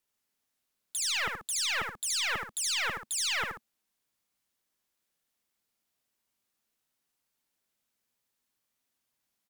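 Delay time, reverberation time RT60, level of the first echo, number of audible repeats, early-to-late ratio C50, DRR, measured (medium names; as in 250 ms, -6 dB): 75 ms, no reverb, -4.5 dB, 2, no reverb, no reverb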